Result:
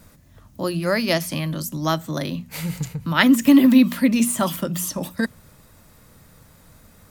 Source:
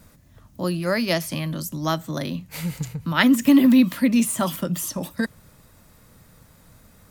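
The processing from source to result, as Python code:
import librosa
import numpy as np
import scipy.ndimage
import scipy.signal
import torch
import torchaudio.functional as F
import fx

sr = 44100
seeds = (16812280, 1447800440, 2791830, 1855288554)

y = fx.hum_notches(x, sr, base_hz=60, count=4)
y = y * 10.0 ** (2.0 / 20.0)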